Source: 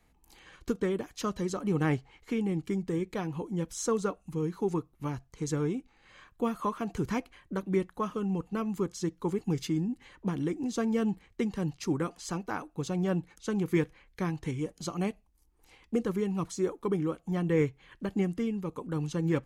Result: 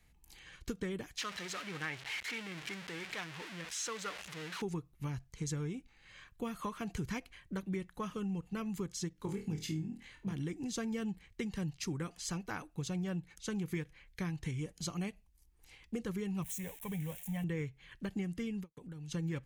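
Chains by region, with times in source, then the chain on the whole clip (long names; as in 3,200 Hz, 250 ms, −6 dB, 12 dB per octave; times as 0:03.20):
0:01.18–0:04.62: converter with a step at zero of −31 dBFS + resonant band-pass 2,000 Hz, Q 0.69
0:09.13–0:10.33: amplitude modulation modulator 57 Hz, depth 30% + flutter between parallel walls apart 4.4 metres, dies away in 0.27 s
0:16.42–0:17.44: spike at every zero crossing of −35 dBFS + phaser with its sweep stopped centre 1,300 Hz, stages 6
0:18.72–0:19.12: noise gate −46 dBFS, range −50 dB + downward compressor 10 to 1, threshold −41 dBFS + parametric band 1,100 Hz −8.5 dB 0.21 octaves
whole clip: flat-topped bell 540 Hz −8 dB 2.9 octaves; downward compressor, threshold −35 dBFS; every ending faded ahead of time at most 580 dB per second; level +1 dB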